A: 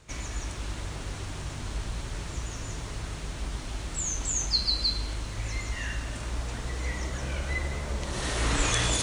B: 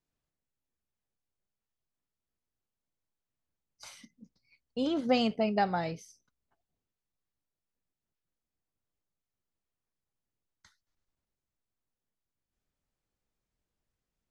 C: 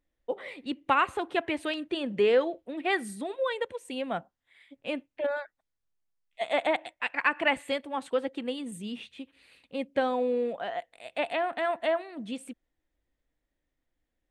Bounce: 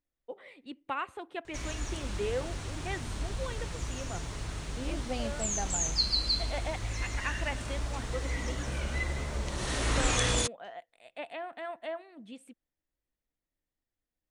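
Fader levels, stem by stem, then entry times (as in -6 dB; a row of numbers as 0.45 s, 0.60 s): -2.0 dB, -10.0 dB, -10.5 dB; 1.45 s, 0.00 s, 0.00 s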